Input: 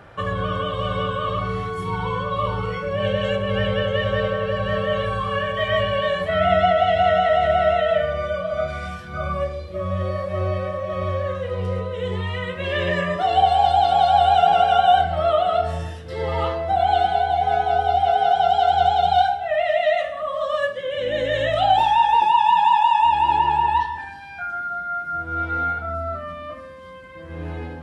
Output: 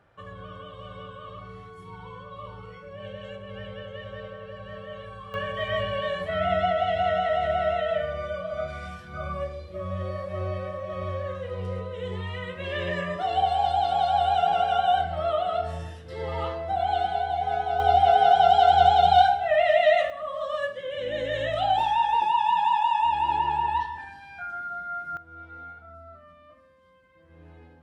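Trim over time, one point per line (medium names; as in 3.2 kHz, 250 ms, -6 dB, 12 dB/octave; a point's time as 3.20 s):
-17 dB
from 5.34 s -7 dB
from 17.80 s 0 dB
from 20.10 s -6.5 dB
from 25.17 s -19 dB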